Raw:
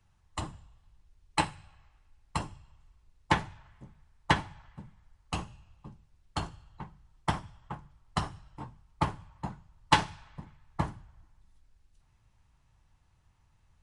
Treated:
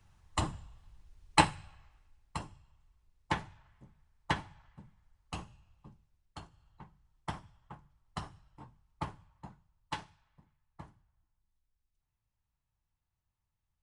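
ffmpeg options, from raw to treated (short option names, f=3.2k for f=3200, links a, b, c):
-af "volume=11.5dB,afade=t=out:st=1.4:d=0.99:silence=0.281838,afade=t=out:st=5.91:d=0.58:silence=0.316228,afade=t=in:st=6.49:d=0.19:silence=0.421697,afade=t=out:st=9.04:d=1.12:silence=0.334965"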